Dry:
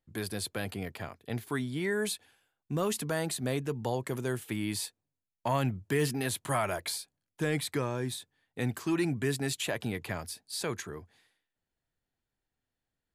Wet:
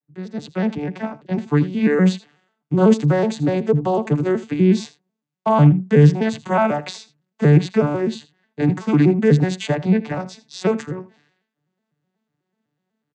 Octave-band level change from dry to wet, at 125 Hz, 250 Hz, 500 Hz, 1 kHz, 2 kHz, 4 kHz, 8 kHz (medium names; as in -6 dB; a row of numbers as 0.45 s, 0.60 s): +17.5 dB, +17.0 dB, +14.0 dB, +12.5 dB, +7.0 dB, +3.0 dB, no reading